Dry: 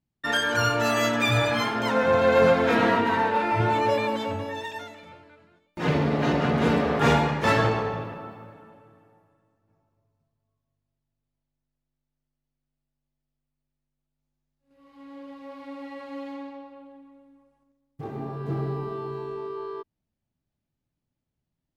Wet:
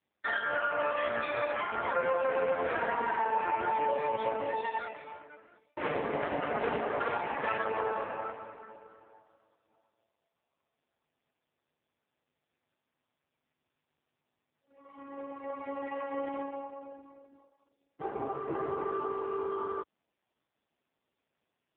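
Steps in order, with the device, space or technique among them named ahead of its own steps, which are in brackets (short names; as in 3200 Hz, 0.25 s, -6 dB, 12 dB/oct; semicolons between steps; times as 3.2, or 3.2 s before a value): voicemail (BPF 440–2600 Hz; compressor 6:1, threshold -31 dBFS, peak gain reduction 13.5 dB; gain +5.5 dB; AMR-NB 4.75 kbps 8000 Hz)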